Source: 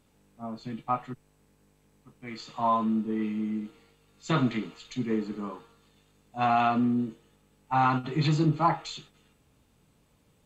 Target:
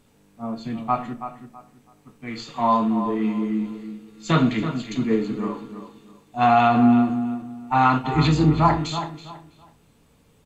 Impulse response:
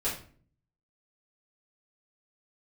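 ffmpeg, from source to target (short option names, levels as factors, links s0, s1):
-filter_complex "[0:a]asplit=2[s0][s1];[s1]adelay=327,lowpass=f=3100:p=1,volume=0.316,asplit=2[s2][s3];[s3]adelay=327,lowpass=f=3100:p=1,volume=0.26,asplit=2[s4][s5];[s5]adelay=327,lowpass=f=3100:p=1,volume=0.26[s6];[s0][s2][s4][s6]amix=inputs=4:normalize=0,asettb=1/sr,asplit=3[s7][s8][s9];[s7]atrim=end=8.144[s10];[s8]atrim=start=8.14:end=8.75,asetpts=PTS-STARTPTS,afade=t=in:d=0.004:c=qsin,afade=t=out:st=0.606:d=0.004:c=qsin,aeval=exprs='val(0)+0.0158*(sin(2*PI*60*n/s)+sin(2*PI*2*60*n/s)/2+sin(2*PI*3*60*n/s)/3+sin(2*PI*4*60*n/s)/4+sin(2*PI*5*60*n/s)/5)':c=same[s11];[s9]atrim=start=8.746[s12];[s10][s11]acrossfade=d=0.004:c1=hsin:c2=qsin[s13];[s13][s12]acrossfade=d=0.004:c1=qsin:c2=hsin,asplit=2[s14][s15];[1:a]atrim=start_sample=2205[s16];[s15][s16]afir=irnorm=-1:irlink=0,volume=0.188[s17];[s14][s17]amix=inputs=2:normalize=0,volume=1.78"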